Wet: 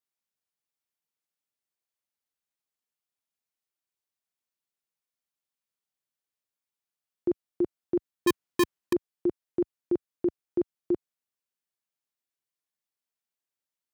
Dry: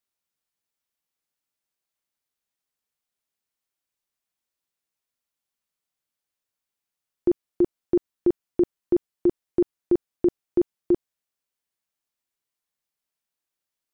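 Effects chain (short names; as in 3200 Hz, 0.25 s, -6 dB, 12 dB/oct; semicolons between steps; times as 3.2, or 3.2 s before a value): 8.27–8.93 half-waves squared off; HPF 74 Hz 12 dB/oct; gain -6 dB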